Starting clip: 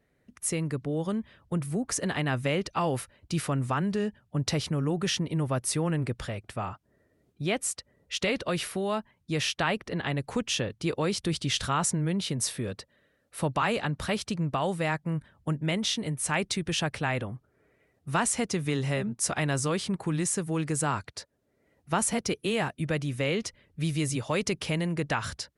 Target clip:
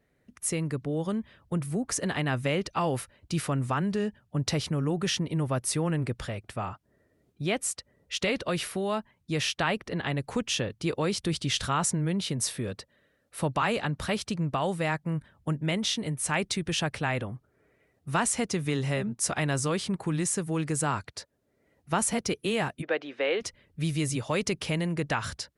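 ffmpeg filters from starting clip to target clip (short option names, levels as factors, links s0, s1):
-filter_complex "[0:a]asplit=3[s0][s1][s2];[s0]afade=t=out:st=22.81:d=0.02[s3];[s1]highpass=f=320:w=0.5412,highpass=f=320:w=1.3066,equalizer=f=480:t=q:w=4:g=4,equalizer=f=760:t=q:w=4:g=6,equalizer=f=1600:t=q:w=4:g=5,lowpass=f=4000:w=0.5412,lowpass=f=4000:w=1.3066,afade=t=in:st=22.81:d=0.02,afade=t=out:st=23.4:d=0.02[s4];[s2]afade=t=in:st=23.4:d=0.02[s5];[s3][s4][s5]amix=inputs=3:normalize=0"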